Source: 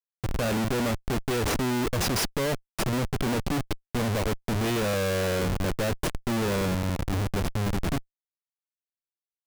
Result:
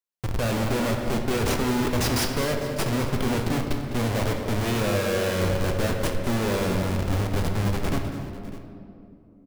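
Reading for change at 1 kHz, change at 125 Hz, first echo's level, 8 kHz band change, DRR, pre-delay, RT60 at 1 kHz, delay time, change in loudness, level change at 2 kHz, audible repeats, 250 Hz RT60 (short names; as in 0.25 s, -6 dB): +2.0 dB, +3.0 dB, -11.5 dB, +1.0 dB, 2.0 dB, 7 ms, 2.4 s, 0.204 s, +2.0 dB, +2.0 dB, 3, 3.7 s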